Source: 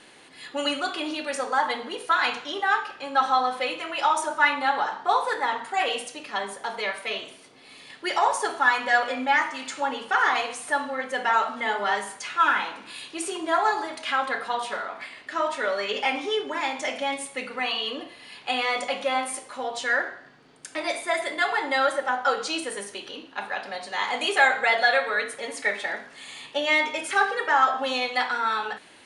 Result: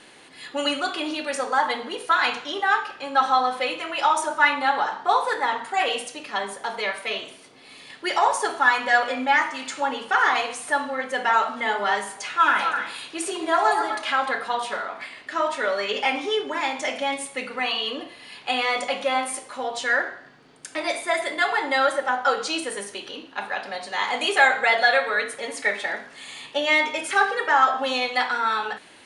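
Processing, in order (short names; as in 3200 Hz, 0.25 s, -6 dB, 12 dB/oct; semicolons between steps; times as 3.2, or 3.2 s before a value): 12.04–14.31 delay with a stepping band-pass 0.128 s, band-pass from 610 Hz, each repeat 1.4 oct, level -3 dB; gain +2 dB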